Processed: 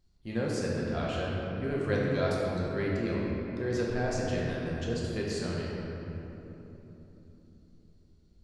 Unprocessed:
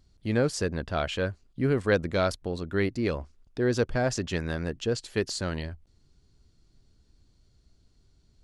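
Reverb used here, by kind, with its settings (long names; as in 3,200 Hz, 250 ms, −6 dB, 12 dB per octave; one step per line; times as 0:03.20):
rectangular room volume 220 cubic metres, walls hard, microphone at 0.89 metres
level −10 dB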